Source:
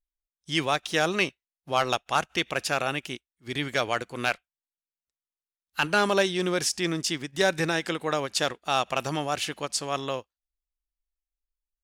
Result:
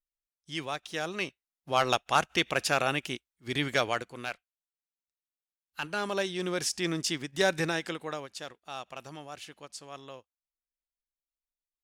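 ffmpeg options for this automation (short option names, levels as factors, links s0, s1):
-af "volume=2.37,afade=t=in:st=1.14:d=0.82:silence=0.334965,afade=t=out:st=3.73:d=0.5:silence=0.316228,afade=t=in:st=5.96:d=1.03:silence=0.421697,afade=t=out:st=7.56:d=0.8:silence=0.237137"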